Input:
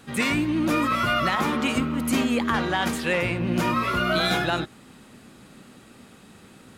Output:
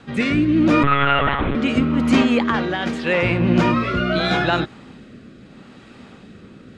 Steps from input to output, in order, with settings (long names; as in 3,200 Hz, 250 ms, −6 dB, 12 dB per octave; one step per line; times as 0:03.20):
0:02.22–0:03.23: low-shelf EQ 120 Hz −8.5 dB
rotating-speaker cabinet horn 0.8 Hz
high-frequency loss of the air 130 metres
0:00.83–0:01.55: one-pitch LPC vocoder at 8 kHz 140 Hz
level +8.5 dB